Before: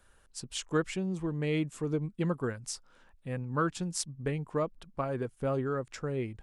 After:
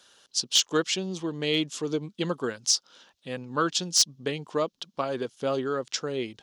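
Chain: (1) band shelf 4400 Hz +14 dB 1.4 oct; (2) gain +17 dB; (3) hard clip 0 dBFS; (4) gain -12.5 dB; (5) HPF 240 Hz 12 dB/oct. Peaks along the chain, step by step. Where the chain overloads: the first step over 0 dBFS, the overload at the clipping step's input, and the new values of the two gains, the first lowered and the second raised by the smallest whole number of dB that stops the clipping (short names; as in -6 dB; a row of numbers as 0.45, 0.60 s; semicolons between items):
-7.0, +10.0, 0.0, -12.5, -11.5 dBFS; step 2, 10.0 dB; step 2 +7 dB, step 4 -2.5 dB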